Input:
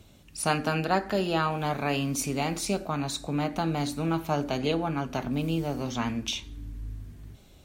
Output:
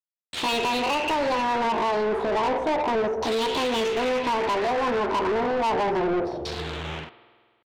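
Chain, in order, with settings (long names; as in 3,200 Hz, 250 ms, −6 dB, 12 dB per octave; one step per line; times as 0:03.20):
fade-out on the ending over 1.49 s
noise gate −47 dBFS, range −48 dB
Chebyshev band-stop filter 650–1,700 Hz, order 4
in parallel at −1 dB: brickwall limiter −23.5 dBFS, peak gain reduction 7.5 dB
on the sum: downward compressor 20 to 1, threshold −26 dBFS, peak gain reduction 8 dB
pitch shifter +7.5 semitones
log-companded quantiser 4 bits
auto-filter low-pass saw down 0.31 Hz 590–4,300 Hz
spring reverb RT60 1.7 s, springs 48 ms, chirp 55 ms, DRR 17 dB
mid-hump overdrive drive 27 dB, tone 3,800 Hz, clips at −15 dBFS
level −2 dB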